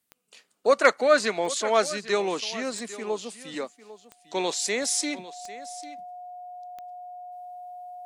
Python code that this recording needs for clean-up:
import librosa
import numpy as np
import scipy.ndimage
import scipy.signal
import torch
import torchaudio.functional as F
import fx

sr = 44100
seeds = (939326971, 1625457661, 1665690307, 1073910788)

y = fx.fix_declip(x, sr, threshold_db=-7.5)
y = fx.fix_declick_ar(y, sr, threshold=10.0)
y = fx.notch(y, sr, hz=720.0, q=30.0)
y = fx.fix_echo_inverse(y, sr, delay_ms=799, level_db=-16.5)